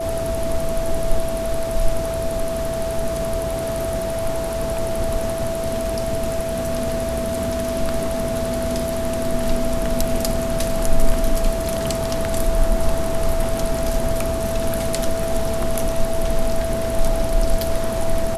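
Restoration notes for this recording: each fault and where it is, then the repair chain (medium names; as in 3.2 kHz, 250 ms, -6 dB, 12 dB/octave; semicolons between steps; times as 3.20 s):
whine 660 Hz -23 dBFS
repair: band-stop 660 Hz, Q 30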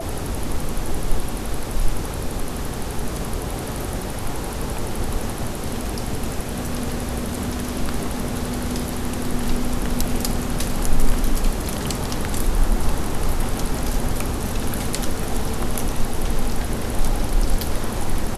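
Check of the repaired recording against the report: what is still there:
nothing left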